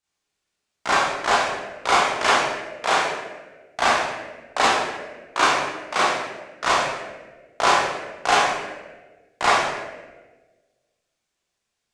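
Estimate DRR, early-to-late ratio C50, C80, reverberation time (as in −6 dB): −9.0 dB, −1.0 dB, 2.5 dB, 1.3 s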